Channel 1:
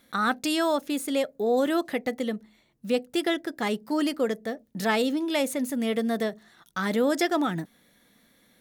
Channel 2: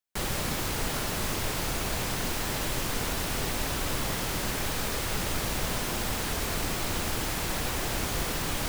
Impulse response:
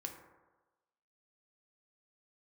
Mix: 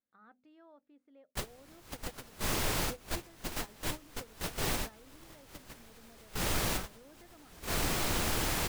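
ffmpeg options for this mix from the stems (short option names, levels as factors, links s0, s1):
-filter_complex "[0:a]lowpass=1700,volume=0.112,asplit=2[s0][s1];[1:a]adelay=1200,volume=0.891[s2];[s1]apad=whole_len=436099[s3];[s2][s3]sidechaincompress=threshold=0.00178:ratio=6:attack=29:release=171[s4];[s0][s4]amix=inputs=2:normalize=0,bandreject=f=50:t=h:w=6,bandreject=f=100:t=h:w=6,bandreject=f=150:t=h:w=6,bandreject=f=200:t=h:w=6,bandreject=f=250:t=h:w=6,agate=range=0.178:threshold=0.0178:ratio=16:detection=peak"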